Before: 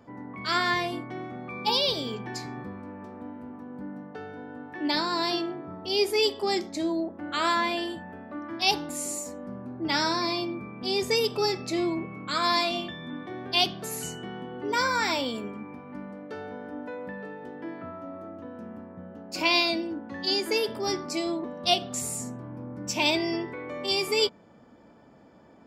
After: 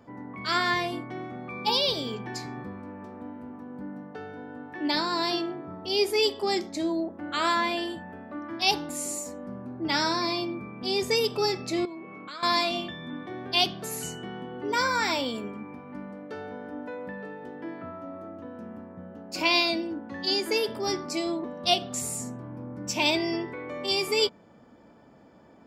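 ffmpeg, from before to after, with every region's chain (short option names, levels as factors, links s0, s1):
-filter_complex "[0:a]asettb=1/sr,asplit=3[s0][s1][s2];[s0]atrim=end=11.854[s3];[s1]atrim=start=11.85:end=12.43,asetpts=PTS-STARTPTS,afade=t=in:d=0.004:c=qsin,afade=t=out:st=0.576:d=0.004:c=qsin,highpass=270,lowpass=5400,acompressor=threshold=0.0126:ratio=4:attack=3.2:release=140:knee=1:detection=peak[s4];[s2]atrim=start=12.426[s5];[s3][s4]acrossfade=d=0.004:c1=hsin:c2=qsin[s6];[s6][s5]acrossfade=d=0.004:c1=qsin:c2=hsin"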